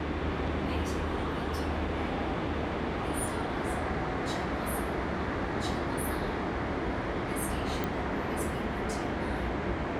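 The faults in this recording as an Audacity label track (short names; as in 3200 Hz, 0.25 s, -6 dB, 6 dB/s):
7.840000	7.840000	pop -18 dBFS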